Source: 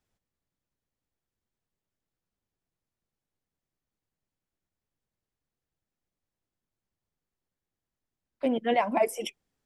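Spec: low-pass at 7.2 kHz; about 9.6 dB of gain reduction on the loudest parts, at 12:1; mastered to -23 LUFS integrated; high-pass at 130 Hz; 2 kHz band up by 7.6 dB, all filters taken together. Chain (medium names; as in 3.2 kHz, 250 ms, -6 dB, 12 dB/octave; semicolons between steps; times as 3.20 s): high-pass 130 Hz; low-pass 7.2 kHz; peaking EQ 2 kHz +8.5 dB; compression 12:1, threshold -27 dBFS; trim +10.5 dB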